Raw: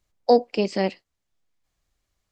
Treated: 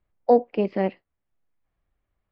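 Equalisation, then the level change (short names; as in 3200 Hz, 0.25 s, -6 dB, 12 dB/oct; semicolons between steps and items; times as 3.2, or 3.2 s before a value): Bessel low-pass 1900 Hz, order 4; air absorption 50 m; 0.0 dB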